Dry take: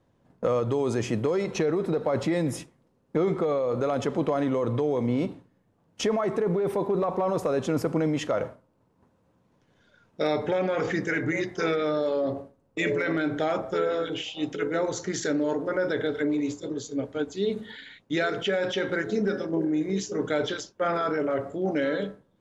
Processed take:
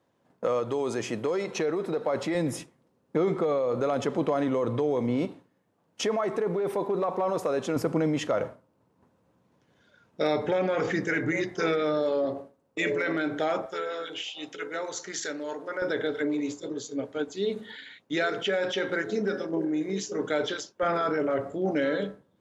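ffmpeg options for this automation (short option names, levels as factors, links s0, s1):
-af "asetnsamples=n=441:p=0,asendcmd='2.35 highpass f 140;5.25 highpass f 310;7.76 highpass f 88;12.25 highpass f 270;13.66 highpass f 1100;15.82 highpass f 260;20.83 highpass f 80',highpass=f=370:p=1"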